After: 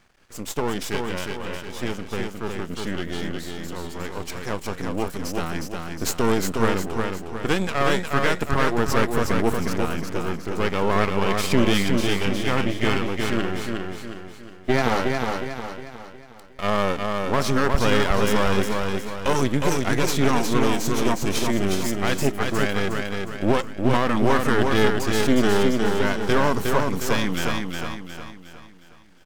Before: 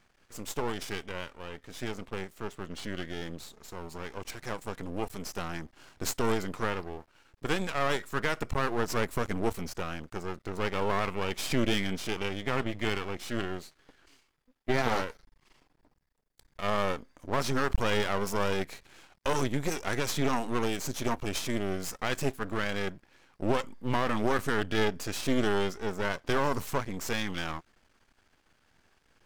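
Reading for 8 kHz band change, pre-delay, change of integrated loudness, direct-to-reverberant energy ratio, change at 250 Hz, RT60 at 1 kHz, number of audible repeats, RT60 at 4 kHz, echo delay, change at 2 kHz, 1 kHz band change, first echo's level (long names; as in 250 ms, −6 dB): +7.5 dB, no reverb audible, +8.5 dB, no reverb audible, +10.5 dB, no reverb audible, 5, no reverb audible, 361 ms, +8.0 dB, +8.0 dB, −4.0 dB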